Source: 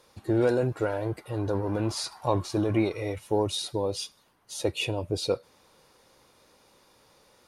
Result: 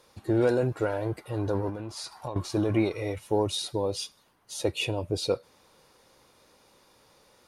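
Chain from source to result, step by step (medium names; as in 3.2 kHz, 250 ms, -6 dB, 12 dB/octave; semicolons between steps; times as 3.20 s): 1.69–2.36 s: compression 5:1, threshold -34 dBFS, peak gain reduction 13.5 dB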